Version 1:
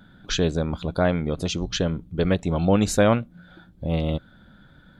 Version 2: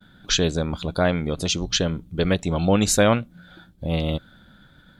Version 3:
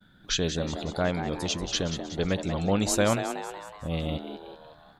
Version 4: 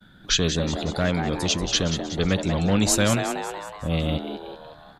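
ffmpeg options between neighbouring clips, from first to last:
-af "highshelf=f=2.4k:g=8.5,agate=range=-33dB:threshold=-48dB:ratio=3:detection=peak"
-filter_complex "[0:a]asplit=7[a][b][c][d][e][f][g];[b]adelay=185,afreqshift=130,volume=-9dB[h];[c]adelay=370,afreqshift=260,volume=-14.7dB[i];[d]adelay=555,afreqshift=390,volume=-20.4dB[j];[e]adelay=740,afreqshift=520,volume=-26dB[k];[f]adelay=925,afreqshift=650,volume=-31.7dB[l];[g]adelay=1110,afreqshift=780,volume=-37.4dB[m];[a][h][i][j][k][l][m]amix=inputs=7:normalize=0,volume=-6.5dB"
-filter_complex "[0:a]acrossover=split=260|1400[a][b][c];[b]asoftclip=type=tanh:threshold=-30dB[d];[a][d][c]amix=inputs=3:normalize=0,aresample=32000,aresample=44100,volume=6.5dB"

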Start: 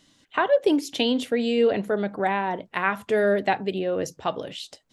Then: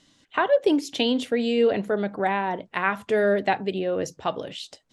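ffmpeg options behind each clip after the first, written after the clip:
-af "lowpass=10k"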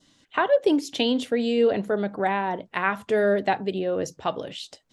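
-af "adynamicequalizer=threshold=0.00631:dfrequency=2300:dqfactor=1.8:tfrequency=2300:tqfactor=1.8:attack=5:release=100:ratio=0.375:range=2:mode=cutabove:tftype=bell"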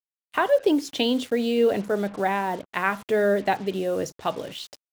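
-af "acrusher=bits=6:mix=0:aa=0.5"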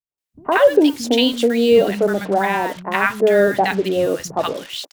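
-filter_complex "[0:a]acrossover=split=190|1000[a][b][c];[b]adelay=110[d];[c]adelay=180[e];[a][d][e]amix=inputs=3:normalize=0,volume=8.5dB"

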